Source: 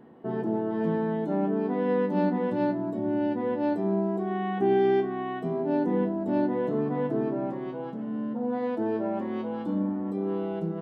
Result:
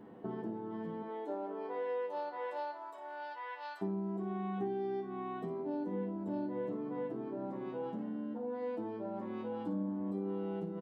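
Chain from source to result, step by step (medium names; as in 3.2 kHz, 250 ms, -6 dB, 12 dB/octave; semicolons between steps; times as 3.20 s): 1.02–3.81 s: high-pass 320 Hz -> 1.2 kHz 24 dB/octave; compression 6:1, threshold -36 dBFS, peak gain reduction 15.5 dB; early reflections 10 ms -4 dB, 57 ms -9 dB; trim -2.5 dB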